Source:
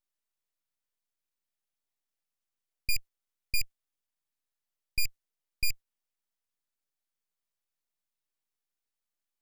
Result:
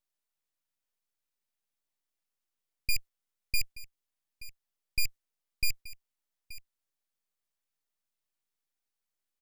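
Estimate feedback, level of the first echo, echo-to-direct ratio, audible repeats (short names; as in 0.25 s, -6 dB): no steady repeat, -17.0 dB, -17.0 dB, 1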